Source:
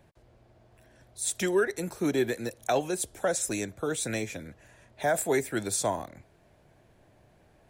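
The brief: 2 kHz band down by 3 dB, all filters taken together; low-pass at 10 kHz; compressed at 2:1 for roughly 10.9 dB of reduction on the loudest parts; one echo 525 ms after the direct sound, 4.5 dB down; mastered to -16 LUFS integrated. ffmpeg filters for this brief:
-af "lowpass=10000,equalizer=f=2000:t=o:g=-4,acompressor=threshold=0.00794:ratio=2,aecho=1:1:525:0.596,volume=13.3"

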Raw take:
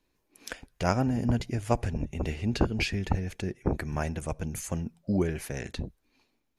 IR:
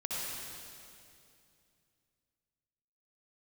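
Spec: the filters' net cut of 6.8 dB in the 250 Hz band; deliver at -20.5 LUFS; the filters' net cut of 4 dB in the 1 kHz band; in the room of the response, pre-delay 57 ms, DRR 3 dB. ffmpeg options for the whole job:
-filter_complex "[0:a]equalizer=f=250:t=o:g=-9,equalizer=f=1000:t=o:g=-5,asplit=2[s0][s1];[1:a]atrim=start_sample=2205,adelay=57[s2];[s1][s2]afir=irnorm=-1:irlink=0,volume=0.422[s3];[s0][s3]amix=inputs=2:normalize=0,volume=3.76"

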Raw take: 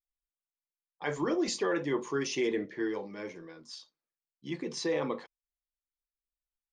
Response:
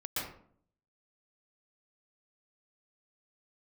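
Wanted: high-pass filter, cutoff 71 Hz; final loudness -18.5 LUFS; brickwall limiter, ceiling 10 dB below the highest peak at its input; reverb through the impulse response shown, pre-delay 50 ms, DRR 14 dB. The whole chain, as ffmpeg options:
-filter_complex "[0:a]highpass=71,alimiter=level_in=1.78:limit=0.0631:level=0:latency=1,volume=0.562,asplit=2[s0][s1];[1:a]atrim=start_sample=2205,adelay=50[s2];[s1][s2]afir=irnorm=-1:irlink=0,volume=0.126[s3];[s0][s3]amix=inputs=2:normalize=0,volume=10.6"

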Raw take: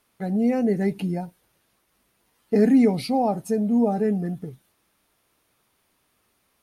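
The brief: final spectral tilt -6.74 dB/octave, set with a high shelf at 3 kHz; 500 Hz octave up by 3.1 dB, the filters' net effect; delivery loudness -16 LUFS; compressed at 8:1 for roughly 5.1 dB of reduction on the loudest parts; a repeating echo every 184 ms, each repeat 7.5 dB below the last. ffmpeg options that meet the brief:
-af "equalizer=f=500:t=o:g=3.5,highshelf=f=3000:g=5.5,acompressor=threshold=0.141:ratio=8,aecho=1:1:184|368|552|736|920:0.422|0.177|0.0744|0.0312|0.0131,volume=2.24"

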